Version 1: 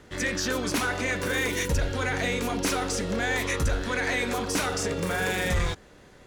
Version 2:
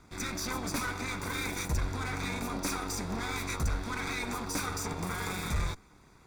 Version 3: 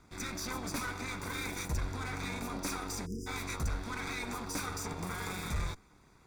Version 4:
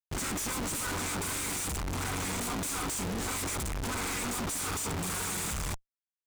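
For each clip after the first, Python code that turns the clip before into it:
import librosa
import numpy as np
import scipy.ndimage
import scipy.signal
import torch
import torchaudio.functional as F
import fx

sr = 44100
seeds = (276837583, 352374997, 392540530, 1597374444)

y1 = fx.lower_of_two(x, sr, delay_ms=0.83)
y1 = fx.peak_eq(y1, sr, hz=3000.0, db=-15.0, octaves=0.24)
y1 = y1 * librosa.db_to_amplitude(-4.5)
y2 = fx.spec_erase(y1, sr, start_s=3.06, length_s=0.21, low_hz=490.0, high_hz=4900.0)
y2 = y2 * librosa.db_to_amplitude(-3.5)
y3 = fx.high_shelf_res(y2, sr, hz=5900.0, db=12.5, q=3.0)
y3 = fx.schmitt(y3, sr, flips_db=-41.5)
y3 = fx.doppler_dist(y3, sr, depth_ms=0.26)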